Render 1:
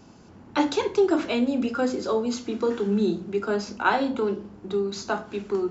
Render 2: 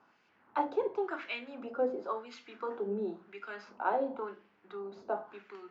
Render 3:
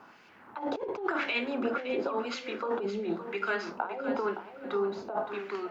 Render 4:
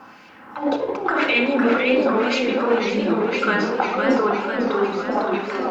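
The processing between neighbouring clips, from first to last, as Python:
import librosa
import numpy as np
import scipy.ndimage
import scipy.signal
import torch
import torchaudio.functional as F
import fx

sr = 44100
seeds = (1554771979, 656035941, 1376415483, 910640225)

y1 = fx.wah_lfo(x, sr, hz=0.94, low_hz=540.0, high_hz=2300.0, q=2.0)
y1 = fx.air_absorb(y1, sr, metres=80.0)
y1 = y1 * 10.0 ** (-2.5 / 20.0)
y2 = fx.over_compress(y1, sr, threshold_db=-40.0, ratio=-1.0)
y2 = fx.echo_feedback(y2, sr, ms=566, feedback_pct=23, wet_db=-10.5)
y2 = y2 * 10.0 ** (8.0 / 20.0)
y3 = fx.room_shoebox(y2, sr, seeds[0], volume_m3=2300.0, walls='furnished', distance_m=2.1)
y3 = fx.echo_warbled(y3, sr, ms=504, feedback_pct=65, rate_hz=2.8, cents=183, wet_db=-5.0)
y3 = y3 * 10.0 ** (9.0 / 20.0)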